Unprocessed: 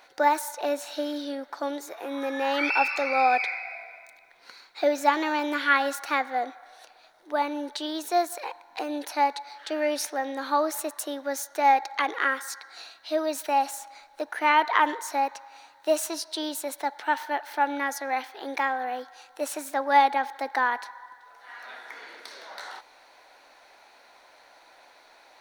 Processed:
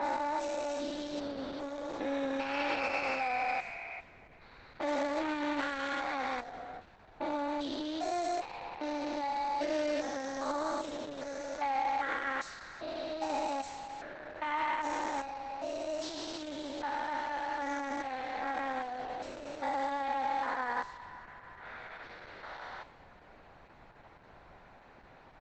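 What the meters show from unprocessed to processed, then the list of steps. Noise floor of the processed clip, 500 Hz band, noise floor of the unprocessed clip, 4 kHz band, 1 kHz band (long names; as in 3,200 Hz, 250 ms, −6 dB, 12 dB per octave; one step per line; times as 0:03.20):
−57 dBFS, −7.0 dB, −56 dBFS, −8.0 dB, −9.0 dB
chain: spectrum averaged block by block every 400 ms
brickwall limiter −23.5 dBFS, peak gain reduction 11 dB
background noise pink −57 dBFS
far-end echo of a speakerphone 110 ms, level −30 dB
low-pass that shuts in the quiet parts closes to 1,600 Hz, open at −28 dBFS
Opus 10 kbit/s 48,000 Hz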